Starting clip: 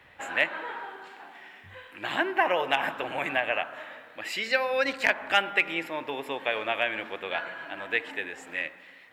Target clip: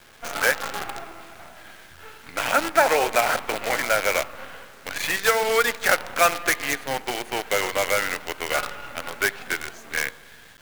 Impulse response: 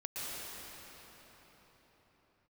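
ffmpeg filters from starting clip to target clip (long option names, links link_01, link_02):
-filter_complex "[0:a]acrossover=split=400|2000[link_01][link_02][link_03];[link_01]acompressor=threshold=-53dB:ratio=6[link_04];[link_03]aeval=exprs='(mod(15.8*val(0)+1,2)-1)/15.8':channel_layout=same[link_05];[link_04][link_02][link_05]amix=inputs=3:normalize=0,asetrate=37926,aresample=44100,acrusher=bits=6:dc=4:mix=0:aa=0.000001,volume=6.5dB"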